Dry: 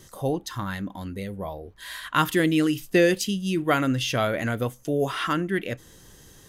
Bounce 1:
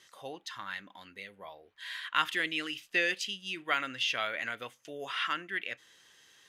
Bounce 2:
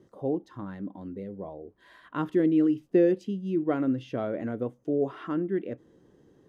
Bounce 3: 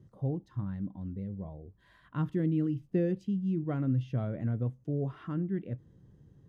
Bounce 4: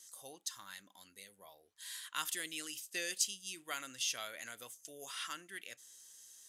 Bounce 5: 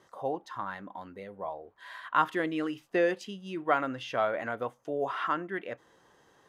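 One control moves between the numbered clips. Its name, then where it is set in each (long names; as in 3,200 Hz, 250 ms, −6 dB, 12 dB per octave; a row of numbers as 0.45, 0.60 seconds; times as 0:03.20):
resonant band-pass, frequency: 2,500, 330, 130, 7,900, 900 Hertz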